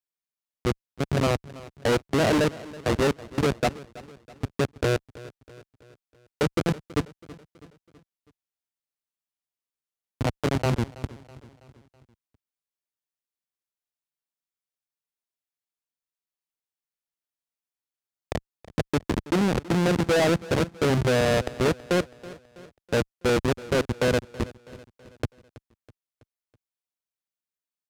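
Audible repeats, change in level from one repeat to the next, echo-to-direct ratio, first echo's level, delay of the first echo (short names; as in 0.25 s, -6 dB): 3, -6.0 dB, -17.5 dB, -19.0 dB, 0.326 s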